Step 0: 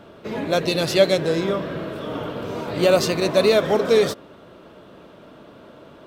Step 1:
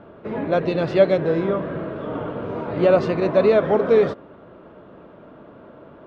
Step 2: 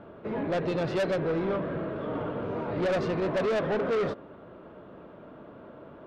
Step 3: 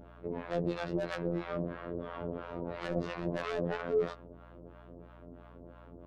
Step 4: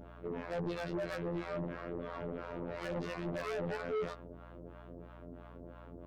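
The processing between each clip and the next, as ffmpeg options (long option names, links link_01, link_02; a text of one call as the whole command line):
ffmpeg -i in.wav -af "lowpass=1700,volume=1dB" out.wav
ffmpeg -i in.wav -af "asoftclip=type=tanh:threshold=-21dB,volume=-3dB" out.wav
ffmpeg -i in.wav -filter_complex "[0:a]afftfilt=real='hypot(re,im)*cos(PI*b)':imag='0':win_size=2048:overlap=0.75,acrossover=split=660[link_01][link_02];[link_01]aeval=exprs='val(0)*(1-1/2+1/2*cos(2*PI*3*n/s))':channel_layout=same[link_03];[link_02]aeval=exprs='val(0)*(1-1/2-1/2*cos(2*PI*3*n/s))':channel_layout=same[link_04];[link_03][link_04]amix=inputs=2:normalize=0,aeval=exprs='val(0)+0.00158*(sin(2*PI*60*n/s)+sin(2*PI*2*60*n/s)/2+sin(2*PI*3*60*n/s)/3+sin(2*PI*4*60*n/s)/4+sin(2*PI*5*60*n/s)/5)':channel_layout=same,volume=2dB" out.wav
ffmpeg -i in.wav -af "asoftclip=type=tanh:threshold=-33.5dB,volume=1.5dB" out.wav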